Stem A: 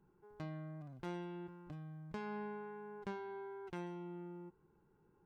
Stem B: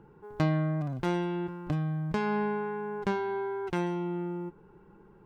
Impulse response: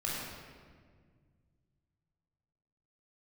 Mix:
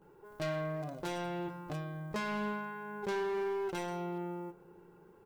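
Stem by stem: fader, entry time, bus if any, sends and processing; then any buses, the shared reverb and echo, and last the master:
+2.5 dB, 0.00 s, send -14.5 dB, none
-7.5 dB, 17 ms, polarity flipped, no send, tilt EQ +4.5 dB/octave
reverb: on, RT60 1.8 s, pre-delay 18 ms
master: peaking EQ 530 Hz +10 dB 1.4 oct; hard clipper -31.5 dBFS, distortion -11 dB

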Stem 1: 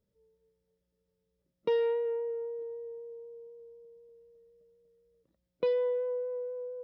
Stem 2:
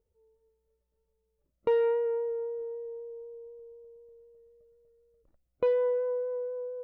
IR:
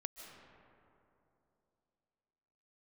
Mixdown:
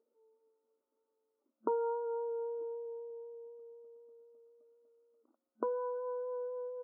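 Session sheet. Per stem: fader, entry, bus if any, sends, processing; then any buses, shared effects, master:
-0.5 dB, 0.00 s, no send, none
+1.5 dB, 0.9 ms, no send, compression, threshold -30 dBFS, peak gain reduction 8 dB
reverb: none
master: FFT band-pass 220–1500 Hz

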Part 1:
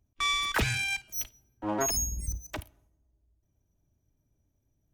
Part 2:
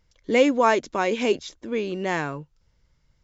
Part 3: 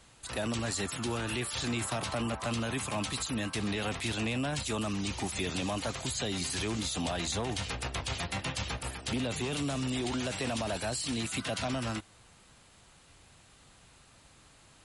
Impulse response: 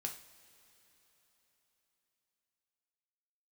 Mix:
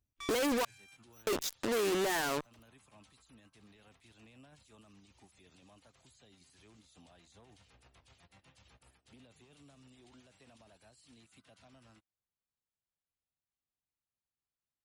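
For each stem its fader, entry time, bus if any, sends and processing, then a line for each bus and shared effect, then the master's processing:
-12.0 dB, 0.00 s, bus A, no send, auto duck -21 dB, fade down 1.05 s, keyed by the second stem
+0.5 dB, 0.00 s, muted 0.65–1.27 s, bus A, no send, high-pass 300 Hz 12 dB/octave; peaking EQ 3.4 kHz -6 dB 0.71 oct; fuzz box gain 44 dB, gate -39 dBFS
-19.0 dB, 0.00 s, no bus, no send, peak limiter -31 dBFS, peak gain reduction 9 dB; upward expansion 2.5:1, over -52 dBFS
bus A: 0.0 dB, treble shelf 5.6 kHz +6.5 dB; peak limiter -19 dBFS, peak gain reduction 13 dB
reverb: none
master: compression 1.5:1, threshold -41 dBFS, peak gain reduction 6.5 dB

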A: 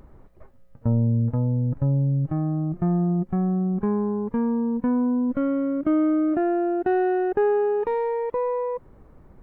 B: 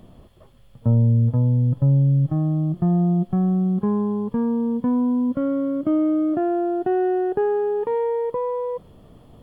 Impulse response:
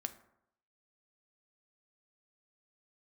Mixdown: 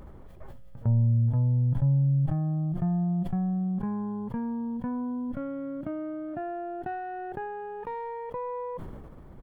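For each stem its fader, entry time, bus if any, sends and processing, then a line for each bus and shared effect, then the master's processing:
+1.0 dB, 0.00 s, no send, compression 3:1, threshold -35 dBFS, peak gain reduction 12.5 dB
-16.0 dB, 0.4 ms, no send, bass shelf 180 Hz +10.5 dB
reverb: none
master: decay stretcher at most 30 dB/s

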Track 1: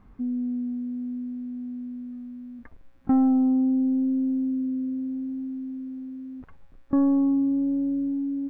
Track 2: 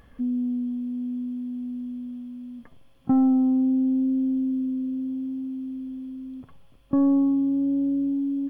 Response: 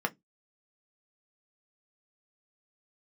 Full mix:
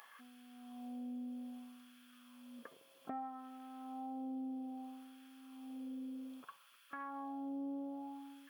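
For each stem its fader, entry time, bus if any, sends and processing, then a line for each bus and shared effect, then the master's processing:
-17.0 dB, 0.00 s, no send, peaking EQ 150 Hz +14.5 dB 1.4 oct; level rider gain up to 10 dB
-3.0 dB, 0.00 s, no send, tilt EQ +3 dB/octave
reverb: none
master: saturation -18.5 dBFS, distortion -20 dB; LFO high-pass sine 0.62 Hz 460–1500 Hz; compression 3:1, threshold -44 dBFS, peak gain reduction 11 dB

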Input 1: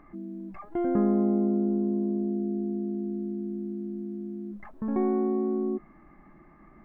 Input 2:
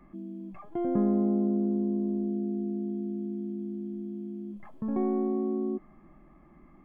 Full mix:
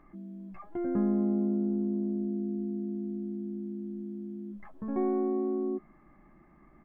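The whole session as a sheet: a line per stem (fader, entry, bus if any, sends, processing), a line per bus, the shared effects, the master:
-6.0 dB, 0.00 s, no send, none
-8.5 dB, 10 ms, no send, none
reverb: none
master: none

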